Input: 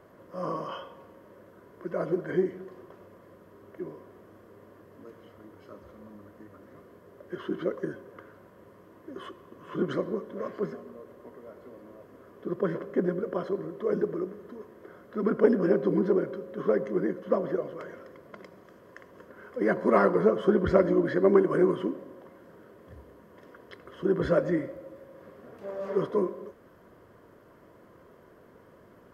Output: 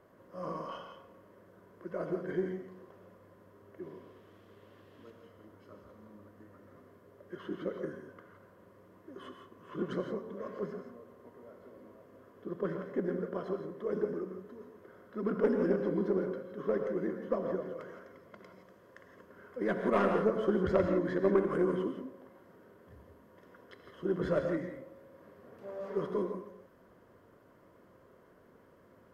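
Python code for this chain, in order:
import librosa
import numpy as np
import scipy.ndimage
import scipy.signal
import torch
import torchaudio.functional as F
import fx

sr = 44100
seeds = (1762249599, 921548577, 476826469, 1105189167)

y = fx.tracing_dist(x, sr, depth_ms=0.068)
y = fx.peak_eq(y, sr, hz=3300.0, db=fx.line((3.82, 8.0), (5.09, 15.0)), octaves=1.1, at=(3.82, 5.09), fade=0.02)
y = fx.rev_gated(y, sr, seeds[0], gate_ms=190, shape='rising', drr_db=4.5)
y = y * librosa.db_to_amplitude(-7.0)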